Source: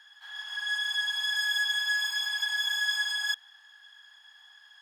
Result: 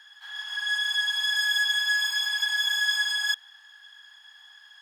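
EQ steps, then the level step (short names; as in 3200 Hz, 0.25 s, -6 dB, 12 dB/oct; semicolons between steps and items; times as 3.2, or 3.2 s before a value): HPF 660 Hz 6 dB/oct; +4.0 dB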